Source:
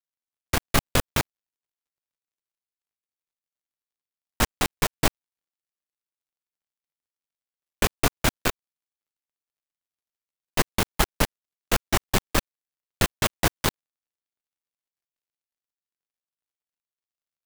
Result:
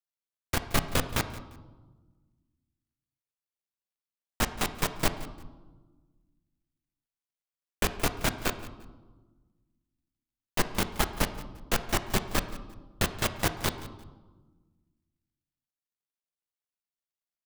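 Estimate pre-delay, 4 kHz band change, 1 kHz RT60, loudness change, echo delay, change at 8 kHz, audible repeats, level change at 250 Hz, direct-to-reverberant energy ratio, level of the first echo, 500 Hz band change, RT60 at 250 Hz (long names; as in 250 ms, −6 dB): 5 ms, −4.5 dB, 1.2 s, −4.5 dB, 174 ms, −5.0 dB, 2, −4.0 dB, 9.5 dB, −18.0 dB, −4.5 dB, 1.9 s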